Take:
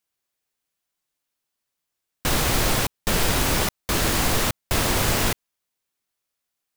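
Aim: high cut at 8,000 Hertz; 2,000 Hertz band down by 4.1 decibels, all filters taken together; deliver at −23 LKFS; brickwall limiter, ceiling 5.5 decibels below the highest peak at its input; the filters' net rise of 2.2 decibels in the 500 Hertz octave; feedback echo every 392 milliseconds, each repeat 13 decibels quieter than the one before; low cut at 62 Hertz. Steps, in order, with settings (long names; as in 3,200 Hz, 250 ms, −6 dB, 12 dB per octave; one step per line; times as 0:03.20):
high-pass filter 62 Hz
low-pass filter 8,000 Hz
parametric band 500 Hz +3 dB
parametric band 2,000 Hz −5.5 dB
brickwall limiter −15.5 dBFS
repeating echo 392 ms, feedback 22%, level −13 dB
level +3 dB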